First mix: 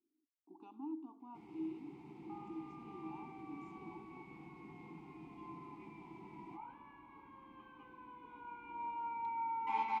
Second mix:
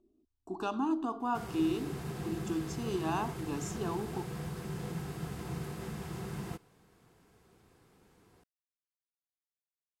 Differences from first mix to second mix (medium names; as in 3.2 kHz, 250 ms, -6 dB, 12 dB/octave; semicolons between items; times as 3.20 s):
speech +8.5 dB; second sound: muted; master: remove vowel filter u